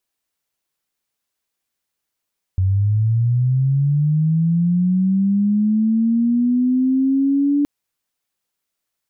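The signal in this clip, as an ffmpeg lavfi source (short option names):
-f lavfi -i "aevalsrc='0.211*sin(2*PI*(92*t+198*t*t/(2*5.07)))':d=5.07:s=44100"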